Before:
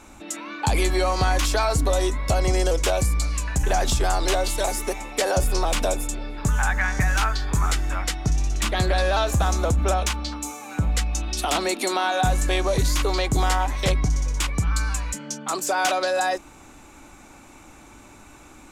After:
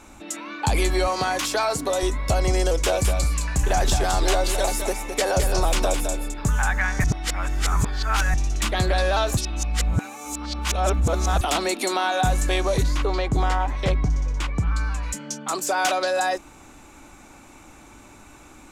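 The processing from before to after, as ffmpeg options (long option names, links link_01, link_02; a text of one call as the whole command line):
ffmpeg -i in.wav -filter_complex "[0:a]asettb=1/sr,asplit=3[link_01][link_02][link_03];[link_01]atrim=end=1.074[link_04];[link_02]atrim=start=1.07:end=2.03,asetpts=PTS-STARTPTS,afade=type=in:duration=0.004:curve=qsin,afade=type=out:start_time=0.956:duration=0.004:curve=qsin,highpass=190[link_05];[link_03]atrim=start=2.026[link_06];[link_04][link_05]acrossfade=duration=0.004:curve1=hsin:curve2=qsin[link_07];[link_07][link_06]acrossfade=duration=0.004:curve1=qsin:curve2=hsin,asettb=1/sr,asplit=3[link_08][link_09][link_10];[link_08]atrim=end=2.674[link_11];[link_09]atrim=start=2.67:end=6.34,asetpts=PTS-STARTPTS,afade=type=in:duration=0.004:curve=qsin,afade=type=out:start_time=3.666:duration=0.004:curve=qsin,aecho=1:1:212:0.447,atrim=end_sample=161847[link_12];[link_10]atrim=start=6.336[link_13];[link_11][link_12]acrossfade=duration=0.004:curve1=hsin:curve2=qsin[link_14];[link_14][link_13]acrossfade=duration=0.004:curve1=qsin:curve2=hsin,asplit=3[link_15][link_16][link_17];[link_15]afade=type=out:start_time=12.82:duration=0.02[link_18];[link_16]aemphasis=mode=reproduction:type=75kf,afade=type=in:start_time=12.82:duration=0.02,afade=type=out:start_time=15.02:duration=0.02[link_19];[link_17]afade=type=in:start_time=15.02:duration=0.02[link_20];[link_18][link_19][link_20]amix=inputs=3:normalize=0,asplit=5[link_21][link_22][link_23][link_24][link_25];[link_21]atrim=end=7.042[link_26];[link_22]atrim=start=7.038:end=8.342,asetpts=PTS-STARTPTS,areverse[link_27];[link_23]atrim=start=8.338:end=9.372[link_28];[link_24]atrim=start=9.368:end=11.412,asetpts=PTS-STARTPTS,areverse[link_29];[link_25]atrim=start=11.408[link_30];[link_26][link_27]acrossfade=duration=0.004:curve1=hsin:curve2=hsin[link_31];[link_31][link_28]acrossfade=duration=0.004:curve1=hsin:curve2=hsin[link_32];[link_32][link_29]acrossfade=duration=0.004:curve1=hsin:curve2=hsin[link_33];[link_33][link_30]acrossfade=duration=0.004:curve1=hsin:curve2=hsin" out.wav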